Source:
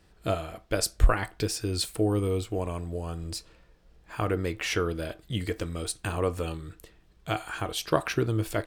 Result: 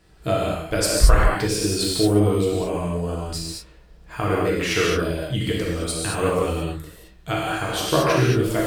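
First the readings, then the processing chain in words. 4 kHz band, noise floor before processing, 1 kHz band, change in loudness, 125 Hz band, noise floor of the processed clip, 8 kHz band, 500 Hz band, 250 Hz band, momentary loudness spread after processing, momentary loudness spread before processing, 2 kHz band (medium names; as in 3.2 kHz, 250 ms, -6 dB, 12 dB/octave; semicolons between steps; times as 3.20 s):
+8.5 dB, -60 dBFS, +8.0 dB, +8.0 dB, +7.0 dB, -49 dBFS, +8.0 dB, +8.5 dB, +8.5 dB, 11 LU, 10 LU, +8.0 dB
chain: gated-style reverb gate 250 ms flat, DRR -5 dB; trim +2 dB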